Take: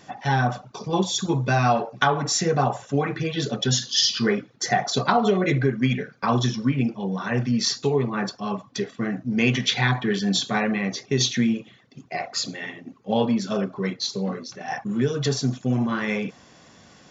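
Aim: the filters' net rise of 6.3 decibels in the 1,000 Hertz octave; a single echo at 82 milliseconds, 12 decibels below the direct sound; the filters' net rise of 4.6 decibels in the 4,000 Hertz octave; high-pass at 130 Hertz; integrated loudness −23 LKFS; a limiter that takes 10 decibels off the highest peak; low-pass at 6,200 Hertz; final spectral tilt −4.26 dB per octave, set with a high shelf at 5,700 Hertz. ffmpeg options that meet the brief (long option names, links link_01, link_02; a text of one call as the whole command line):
ffmpeg -i in.wav -af "highpass=130,lowpass=6200,equalizer=frequency=1000:width_type=o:gain=8.5,equalizer=frequency=4000:width_type=o:gain=8.5,highshelf=frequency=5700:gain=-6,alimiter=limit=-9.5dB:level=0:latency=1,aecho=1:1:82:0.251,volume=-0.5dB" out.wav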